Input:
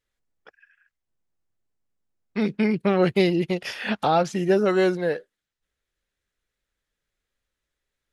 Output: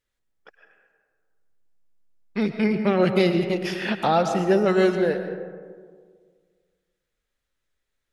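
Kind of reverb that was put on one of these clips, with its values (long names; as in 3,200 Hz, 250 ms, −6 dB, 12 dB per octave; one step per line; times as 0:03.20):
comb and all-pass reverb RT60 1.8 s, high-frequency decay 0.35×, pre-delay 80 ms, DRR 7.5 dB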